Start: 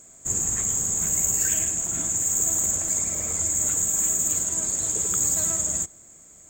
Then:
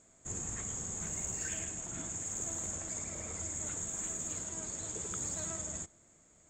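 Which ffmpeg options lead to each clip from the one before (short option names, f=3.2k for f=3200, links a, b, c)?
-af "lowpass=5k,volume=-8dB"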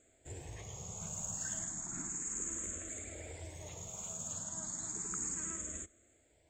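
-filter_complex "[0:a]asplit=2[a][b];[b]afreqshift=0.33[c];[a][c]amix=inputs=2:normalize=1"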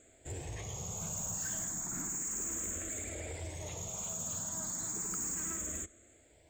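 -af "asoftclip=type=tanh:threshold=-40dB,volume=6.5dB"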